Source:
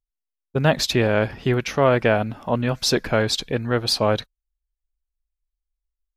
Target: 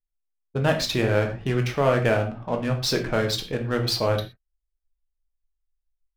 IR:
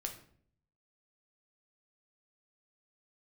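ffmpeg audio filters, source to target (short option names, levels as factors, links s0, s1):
-filter_complex "[0:a]adynamicsmooth=sensitivity=5.5:basefreq=1600[s0];[1:a]atrim=start_sample=2205,afade=t=out:st=0.18:d=0.01,atrim=end_sample=8379[s1];[s0][s1]afir=irnorm=-1:irlink=0,volume=0.794"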